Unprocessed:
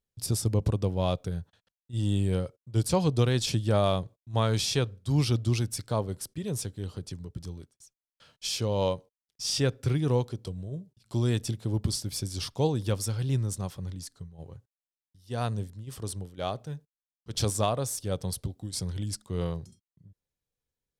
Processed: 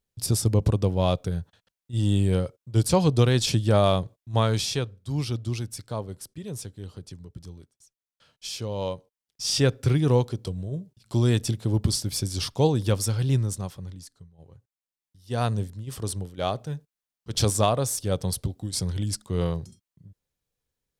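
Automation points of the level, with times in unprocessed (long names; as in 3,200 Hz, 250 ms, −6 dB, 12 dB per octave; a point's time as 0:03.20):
0:04.34 +4.5 dB
0:04.98 −3 dB
0:08.84 −3 dB
0:09.63 +5 dB
0:13.32 +5 dB
0:14.36 −7.5 dB
0:15.33 +5 dB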